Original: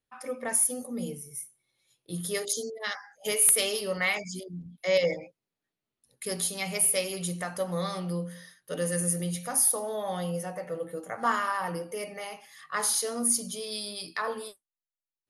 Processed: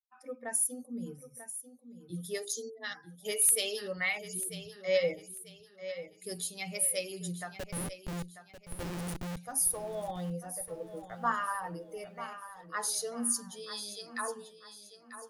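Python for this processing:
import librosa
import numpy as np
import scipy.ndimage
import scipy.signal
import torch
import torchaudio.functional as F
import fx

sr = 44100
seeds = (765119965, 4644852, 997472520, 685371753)

y = fx.bin_expand(x, sr, power=1.5)
y = fx.schmitt(y, sr, flips_db=-31.0, at=(7.56, 9.37))
y = fx.echo_feedback(y, sr, ms=942, feedback_pct=35, wet_db=-12.0)
y = y * 10.0 ** (-2.5 / 20.0)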